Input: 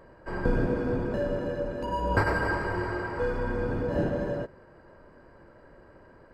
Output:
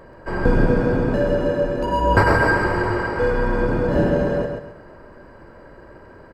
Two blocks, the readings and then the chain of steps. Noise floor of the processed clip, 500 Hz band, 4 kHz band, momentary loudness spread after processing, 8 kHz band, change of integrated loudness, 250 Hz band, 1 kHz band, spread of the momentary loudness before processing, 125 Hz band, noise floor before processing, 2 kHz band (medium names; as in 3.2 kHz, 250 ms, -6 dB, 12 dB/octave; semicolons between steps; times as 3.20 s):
-45 dBFS, +9.5 dB, +10.0 dB, 7 LU, no reading, +9.5 dB, +9.5 dB, +10.5 dB, 6 LU, +9.5 dB, -54 dBFS, +10.0 dB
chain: on a send: feedback delay 133 ms, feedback 33%, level -5 dB; on the sum: trim +8.5 dB